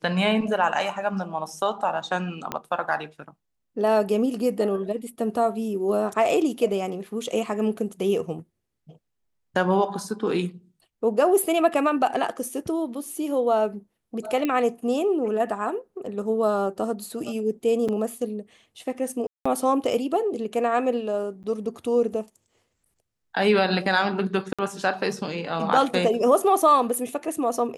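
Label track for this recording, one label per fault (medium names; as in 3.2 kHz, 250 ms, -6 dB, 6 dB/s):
2.520000	2.520000	pop -12 dBFS
14.450000	14.450000	pop -13 dBFS
17.880000	17.890000	dropout 6.3 ms
19.270000	19.450000	dropout 185 ms
21.430000	21.440000	dropout 9 ms
24.530000	24.590000	dropout 56 ms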